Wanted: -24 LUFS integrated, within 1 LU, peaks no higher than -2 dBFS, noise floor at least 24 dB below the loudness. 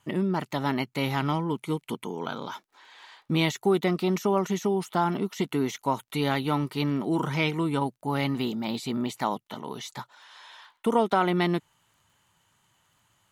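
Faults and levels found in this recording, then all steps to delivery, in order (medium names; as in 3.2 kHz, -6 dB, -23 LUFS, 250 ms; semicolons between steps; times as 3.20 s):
tick rate 18 per s; loudness -28.0 LUFS; peak level -11.0 dBFS; loudness target -24.0 LUFS
-> de-click; trim +4 dB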